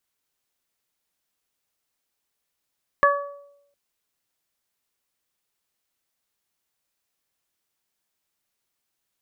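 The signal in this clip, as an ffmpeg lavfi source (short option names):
-f lavfi -i "aevalsrc='0.133*pow(10,-3*t/0.84)*sin(2*PI*569*t)+0.237*pow(10,-3*t/0.53)*sin(2*PI*1138*t)+0.15*pow(10,-3*t/0.35)*sin(2*PI*1707*t)':d=0.71:s=44100"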